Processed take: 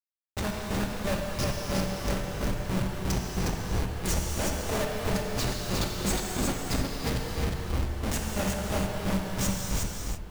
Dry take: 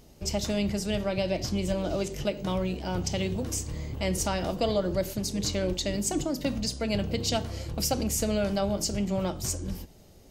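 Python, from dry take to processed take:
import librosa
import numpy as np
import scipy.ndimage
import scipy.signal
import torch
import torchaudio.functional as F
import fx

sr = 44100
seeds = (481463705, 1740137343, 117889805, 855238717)

p1 = fx.peak_eq(x, sr, hz=250.0, db=-3.0, octaves=1.6)
p2 = fx.hum_notches(p1, sr, base_hz=50, count=4)
p3 = 10.0 ** (-25.5 / 20.0) * np.tanh(p2 / 10.0 ** (-25.5 / 20.0))
p4 = p2 + F.gain(torch.from_numpy(p3), -7.0).numpy()
p5 = fx.granulator(p4, sr, seeds[0], grain_ms=209.0, per_s=3.0, spray_ms=100.0, spread_st=0)
p6 = fx.schmitt(p5, sr, flips_db=-35.0)
p7 = p6 + fx.echo_single(p6, sr, ms=361, db=-3.5, dry=0)
p8 = fx.rev_gated(p7, sr, seeds[1], gate_ms=360, shape='flat', drr_db=-0.5)
y = F.gain(torch.from_numpy(p8), 5.5).numpy()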